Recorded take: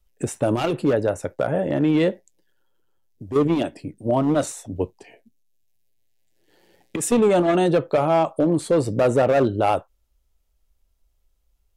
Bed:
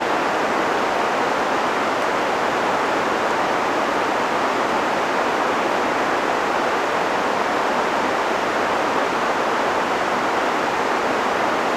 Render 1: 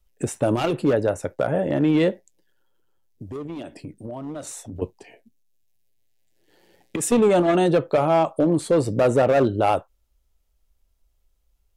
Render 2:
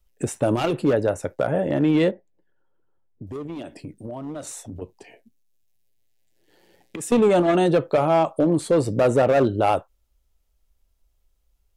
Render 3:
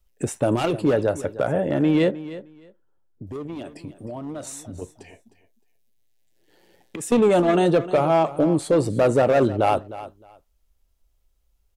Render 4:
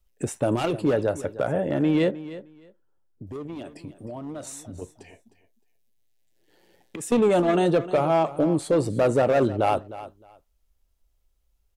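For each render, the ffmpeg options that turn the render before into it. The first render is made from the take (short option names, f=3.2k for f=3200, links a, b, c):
-filter_complex "[0:a]asettb=1/sr,asplit=3[a][b][c];[a]atrim=end=3.264[d];[b]atrim=start=3.26:end=4.82,asetpts=PTS-STARTPTS,afade=t=in:d=0.004:c=qsin,afade=t=out:st=1.556:d=0.004:c=qsin,acompressor=threshold=-30dB:ratio=10:attack=3.2:release=140:knee=1:detection=peak[e];[c]atrim=start=4.816[f];[d][e]acrossfade=d=0.004:c1=hsin:c2=qsin[g];[g][f]acrossfade=d=0.004:c1=qsin:c2=hsin"
-filter_complex "[0:a]asettb=1/sr,asplit=3[a][b][c];[a]atrim=end=2.114[d];[b]atrim=start=2.11:end=3.27,asetpts=PTS-STARTPTS,afade=t=in:d=0.004:c=qsin,afade=t=out:st=1.156:d=0.004:c=qsin,lowpass=1.5k[e];[c]atrim=start=3.266[f];[d][e]acrossfade=d=0.004:c1=hsin:c2=qsin[g];[g][f]acrossfade=d=0.004:c1=qsin:c2=hsin,asettb=1/sr,asplit=3[h][i][j];[h]atrim=end=4.734[k];[i]atrim=start=4.73:end=7.12,asetpts=PTS-STARTPTS,afade=t=in:d=0.004:c=qsin,afade=t=out:st=2.386:d=0.004:c=qsin,acompressor=threshold=-34dB:ratio=2:attack=3.2:release=140:knee=1:detection=peak[l];[j]atrim=start=7.116[m];[k][l]acrossfade=d=0.004:c1=hsin:c2=qsin[n];[n][m]acrossfade=d=0.004:c1=qsin:c2=hsin"
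-af "aecho=1:1:308|616:0.168|0.0302"
-af "volume=-2.5dB"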